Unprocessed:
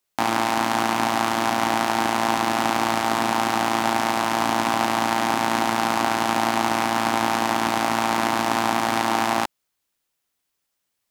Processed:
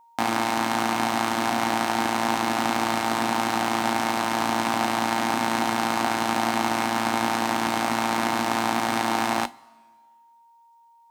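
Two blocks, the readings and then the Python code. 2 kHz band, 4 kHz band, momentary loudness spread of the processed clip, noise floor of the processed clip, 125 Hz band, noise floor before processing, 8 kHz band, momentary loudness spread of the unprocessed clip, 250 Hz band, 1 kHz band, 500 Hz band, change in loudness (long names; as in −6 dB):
−2.0 dB, −2.0 dB, 1 LU, −56 dBFS, −2.0 dB, −78 dBFS, −2.0 dB, 0 LU, −1.0 dB, −3.0 dB, −3.0 dB, −2.5 dB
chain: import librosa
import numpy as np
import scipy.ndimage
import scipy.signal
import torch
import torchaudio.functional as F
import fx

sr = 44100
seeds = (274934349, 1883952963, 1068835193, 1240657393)

y = x + 10.0 ** (-50.0 / 20.0) * np.sin(2.0 * np.pi * 930.0 * np.arange(len(x)) / sr)
y = fx.comb_fb(y, sr, f0_hz=240.0, decay_s=0.19, harmonics='odd', damping=0.0, mix_pct=60)
y = fx.rev_double_slope(y, sr, seeds[0], early_s=0.21, late_s=1.6, knee_db=-18, drr_db=14.5)
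y = y * librosa.db_to_amplitude(4.5)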